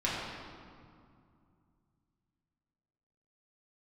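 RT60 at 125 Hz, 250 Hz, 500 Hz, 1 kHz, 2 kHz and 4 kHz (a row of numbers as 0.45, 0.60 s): 3.6, 3.1, 2.3, 2.3, 1.7, 1.4 s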